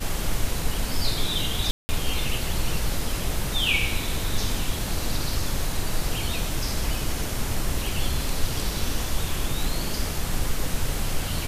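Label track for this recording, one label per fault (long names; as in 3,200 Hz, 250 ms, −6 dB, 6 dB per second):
1.710000	1.890000	drop-out 180 ms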